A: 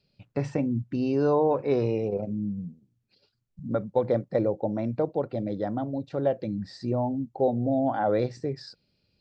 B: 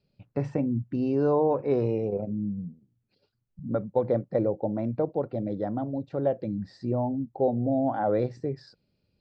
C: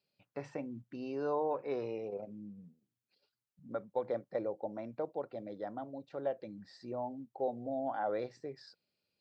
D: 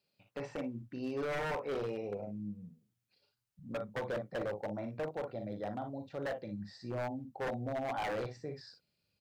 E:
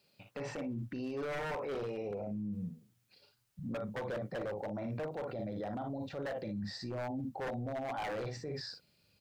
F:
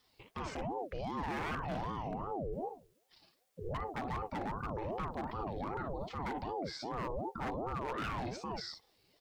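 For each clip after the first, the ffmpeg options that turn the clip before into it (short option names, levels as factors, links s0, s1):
-af "highshelf=f=2200:g=-11"
-af "highpass=f=1100:p=1,volume=0.75"
-af "aecho=1:1:39|58:0.355|0.355,asubboost=boost=3.5:cutoff=160,aeval=exprs='0.0237*(abs(mod(val(0)/0.0237+3,4)-2)-1)':c=same,volume=1.26"
-af "alimiter=level_in=8.41:limit=0.0631:level=0:latency=1:release=17,volume=0.119,volume=3.16"
-af "aeval=exprs='val(0)*sin(2*PI*440*n/s+440*0.5/2.6*sin(2*PI*2.6*n/s))':c=same,volume=1.41"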